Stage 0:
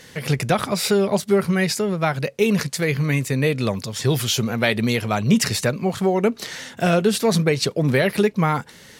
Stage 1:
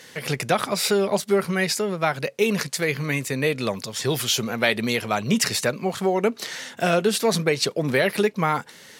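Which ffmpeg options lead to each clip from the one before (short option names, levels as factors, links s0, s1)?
-af "highpass=f=320:p=1"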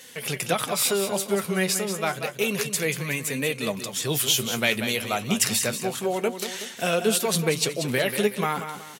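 -af "aecho=1:1:186|372|558|744:0.355|0.124|0.0435|0.0152,aexciter=amount=2:drive=2.8:freq=2600,flanger=delay=3.7:depth=7.4:regen=62:speed=0.29:shape=triangular"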